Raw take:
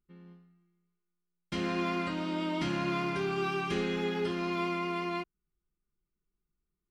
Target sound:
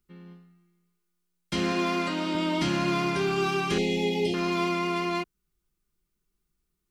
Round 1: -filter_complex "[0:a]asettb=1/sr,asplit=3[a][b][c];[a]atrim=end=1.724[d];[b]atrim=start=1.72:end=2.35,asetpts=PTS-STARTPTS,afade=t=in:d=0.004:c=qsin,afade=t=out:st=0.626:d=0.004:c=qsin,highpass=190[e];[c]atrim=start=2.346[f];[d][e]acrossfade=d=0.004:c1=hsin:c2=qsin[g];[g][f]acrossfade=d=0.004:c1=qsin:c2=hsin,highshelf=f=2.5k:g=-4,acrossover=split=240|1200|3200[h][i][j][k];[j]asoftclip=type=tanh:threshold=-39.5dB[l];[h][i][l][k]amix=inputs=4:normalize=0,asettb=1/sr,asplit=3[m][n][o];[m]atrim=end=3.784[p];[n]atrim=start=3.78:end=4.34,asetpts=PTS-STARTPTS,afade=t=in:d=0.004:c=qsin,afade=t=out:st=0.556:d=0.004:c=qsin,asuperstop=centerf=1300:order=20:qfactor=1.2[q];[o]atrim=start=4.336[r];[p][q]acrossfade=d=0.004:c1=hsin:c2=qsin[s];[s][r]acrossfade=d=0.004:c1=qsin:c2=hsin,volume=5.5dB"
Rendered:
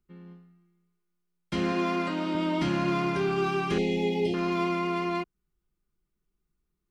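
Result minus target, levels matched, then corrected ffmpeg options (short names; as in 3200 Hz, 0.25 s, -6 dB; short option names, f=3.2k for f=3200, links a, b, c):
4000 Hz band -4.5 dB
-filter_complex "[0:a]asettb=1/sr,asplit=3[a][b][c];[a]atrim=end=1.724[d];[b]atrim=start=1.72:end=2.35,asetpts=PTS-STARTPTS,afade=t=in:d=0.004:c=qsin,afade=t=out:st=0.626:d=0.004:c=qsin,highpass=190[e];[c]atrim=start=2.346[f];[d][e]acrossfade=d=0.004:c1=hsin:c2=qsin[g];[g][f]acrossfade=d=0.004:c1=qsin:c2=hsin,highshelf=f=2.5k:g=5.5,acrossover=split=240|1200|3200[h][i][j][k];[j]asoftclip=type=tanh:threshold=-39.5dB[l];[h][i][l][k]amix=inputs=4:normalize=0,asettb=1/sr,asplit=3[m][n][o];[m]atrim=end=3.784[p];[n]atrim=start=3.78:end=4.34,asetpts=PTS-STARTPTS,afade=t=in:d=0.004:c=qsin,afade=t=out:st=0.556:d=0.004:c=qsin,asuperstop=centerf=1300:order=20:qfactor=1.2[q];[o]atrim=start=4.336[r];[p][q]acrossfade=d=0.004:c1=hsin:c2=qsin[s];[s][r]acrossfade=d=0.004:c1=qsin:c2=hsin,volume=5.5dB"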